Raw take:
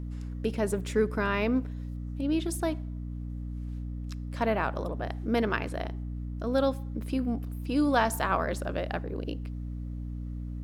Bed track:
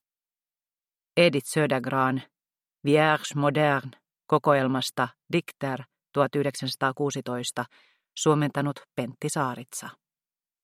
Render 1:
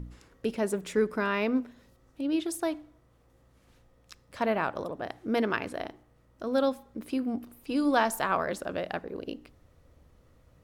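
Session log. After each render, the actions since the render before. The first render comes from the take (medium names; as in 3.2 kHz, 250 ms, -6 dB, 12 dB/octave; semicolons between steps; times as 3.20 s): de-hum 60 Hz, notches 5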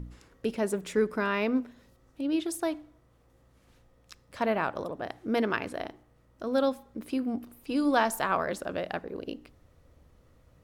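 no audible change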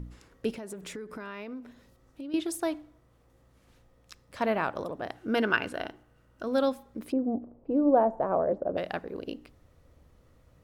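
0.53–2.34 s: compression 10:1, threshold -36 dBFS; 5.15–6.43 s: small resonant body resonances 1.5/2.8 kHz, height 12 dB, ringing for 25 ms; 7.12–8.77 s: resonant low-pass 610 Hz, resonance Q 2.2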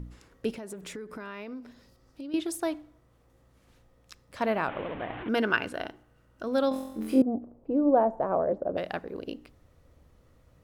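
1.47–2.30 s: peaking EQ 4.9 kHz +10 dB 0.36 oct; 4.68–5.29 s: one-bit delta coder 16 kbps, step -33 dBFS; 6.69–7.22 s: flutter echo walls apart 3.9 m, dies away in 0.82 s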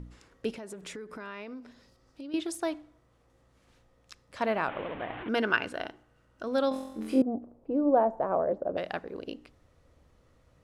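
low-pass 9.6 kHz 12 dB/octave; bass shelf 350 Hz -4 dB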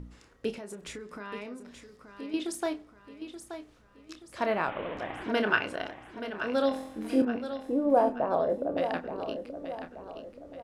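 doubling 29 ms -9 dB; on a send: feedback delay 878 ms, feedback 44%, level -10 dB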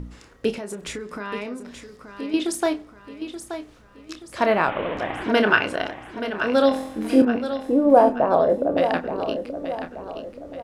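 trim +9 dB; peak limiter -3 dBFS, peak gain reduction 1.5 dB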